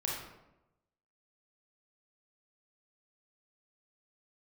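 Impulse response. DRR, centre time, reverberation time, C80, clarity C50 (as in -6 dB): -3.5 dB, 60 ms, 0.95 s, 4.5 dB, 0.5 dB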